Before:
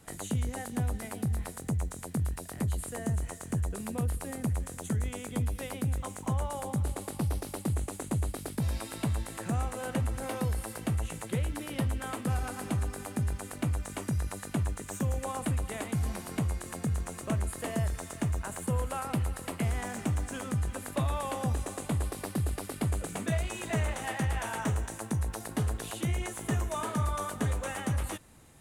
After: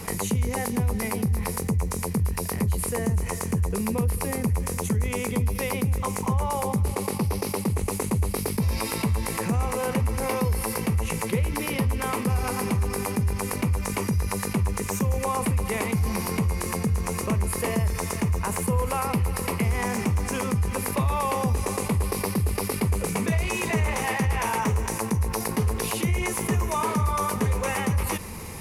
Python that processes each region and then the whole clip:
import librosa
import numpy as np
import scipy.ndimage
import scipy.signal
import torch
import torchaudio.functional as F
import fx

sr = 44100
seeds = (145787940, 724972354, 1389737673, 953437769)

y = fx.chain(x, sr, fx.highpass(hz=98.0, slope=12),
    fx.high_shelf(hz=9400.0, db=-4.5), at=(6.88, 7.83))
y = fx.ripple_eq(y, sr, per_octave=0.84, db=9)
y = fx.env_flatten(y, sr, amount_pct=50)
y = F.gain(torch.from_numpy(y), 3.0).numpy()